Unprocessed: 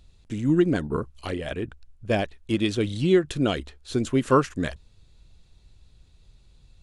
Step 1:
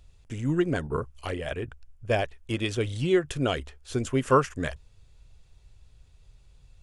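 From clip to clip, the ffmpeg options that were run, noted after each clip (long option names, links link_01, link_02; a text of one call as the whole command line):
ffmpeg -i in.wav -af "equalizer=frequency=200:width_type=o:width=0.33:gain=-12,equalizer=frequency=315:width_type=o:width=0.33:gain=-8,equalizer=frequency=4000:width_type=o:width=0.33:gain=-8" out.wav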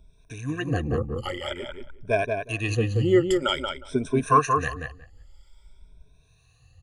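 ffmpeg -i in.wav -filter_complex "[0:a]afftfilt=real='re*pow(10,22/40*sin(2*PI*(1.6*log(max(b,1)*sr/1024/100)/log(2)-(0.51)*(pts-256)/sr)))':imag='im*pow(10,22/40*sin(2*PI*(1.6*log(max(b,1)*sr/1024/100)/log(2)-(0.51)*(pts-256)/sr)))':win_size=1024:overlap=0.75,acrossover=split=720[link_01][link_02];[link_01]aeval=exprs='val(0)*(1-0.7/2+0.7/2*cos(2*PI*1*n/s))':channel_layout=same[link_03];[link_02]aeval=exprs='val(0)*(1-0.7/2-0.7/2*cos(2*PI*1*n/s))':channel_layout=same[link_04];[link_03][link_04]amix=inputs=2:normalize=0,asplit=2[link_05][link_06];[link_06]adelay=181,lowpass=frequency=3000:poles=1,volume=-4.5dB,asplit=2[link_07][link_08];[link_08]adelay=181,lowpass=frequency=3000:poles=1,volume=0.15,asplit=2[link_09][link_10];[link_10]adelay=181,lowpass=frequency=3000:poles=1,volume=0.15[link_11];[link_07][link_09][link_11]amix=inputs=3:normalize=0[link_12];[link_05][link_12]amix=inputs=2:normalize=0" out.wav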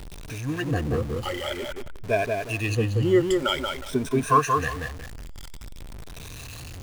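ffmpeg -i in.wav -af "aeval=exprs='val(0)+0.5*0.0237*sgn(val(0))':channel_layout=same,volume=-1dB" out.wav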